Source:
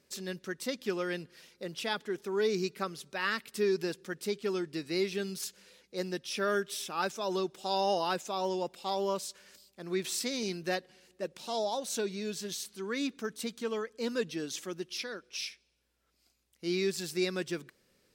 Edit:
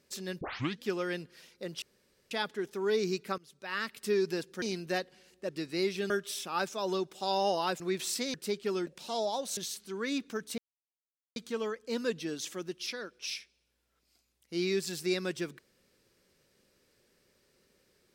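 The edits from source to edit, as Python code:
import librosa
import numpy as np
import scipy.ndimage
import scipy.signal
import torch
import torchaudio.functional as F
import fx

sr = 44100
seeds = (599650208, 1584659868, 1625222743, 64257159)

y = fx.edit(x, sr, fx.tape_start(start_s=0.41, length_s=0.42),
    fx.insert_room_tone(at_s=1.82, length_s=0.49),
    fx.fade_in_from(start_s=2.89, length_s=0.59, floor_db=-20.5),
    fx.swap(start_s=4.13, length_s=0.53, other_s=10.39, other_length_s=0.87),
    fx.cut(start_s=5.27, length_s=1.26),
    fx.cut(start_s=8.23, length_s=1.62),
    fx.cut(start_s=11.96, length_s=0.5),
    fx.insert_silence(at_s=13.47, length_s=0.78), tone=tone)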